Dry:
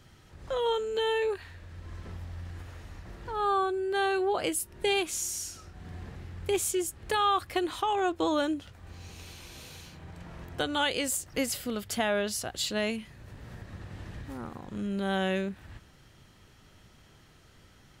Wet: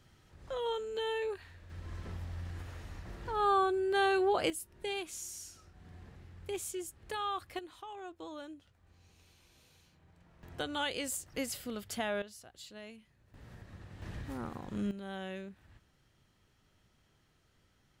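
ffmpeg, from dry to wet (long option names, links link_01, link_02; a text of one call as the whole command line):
ffmpeg -i in.wav -af "asetnsamples=nb_out_samples=441:pad=0,asendcmd='1.7 volume volume -1dB;4.5 volume volume -10.5dB;7.59 volume volume -18dB;10.43 volume volume -7dB;12.22 volume volume -19dB;13.34 volume volume -7.5dB;14.02 volume volume -1dB;14.91 volume volume -13dB',volume=-7dB" out.wav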